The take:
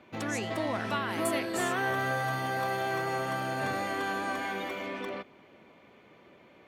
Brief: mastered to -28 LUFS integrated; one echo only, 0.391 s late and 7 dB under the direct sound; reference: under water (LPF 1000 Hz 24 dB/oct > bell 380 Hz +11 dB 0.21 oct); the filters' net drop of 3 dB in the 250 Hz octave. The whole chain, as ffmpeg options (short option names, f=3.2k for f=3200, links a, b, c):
-af "lowpass=f=1k:w=0.5412,lowpass=f=1k:w=1.3066,equalizer=f=250:t=o:g=-8.5,equalizer=f=380:t=o:w=0.21:g=11,aecho=1:1:391:0.447,volume=5.5dB"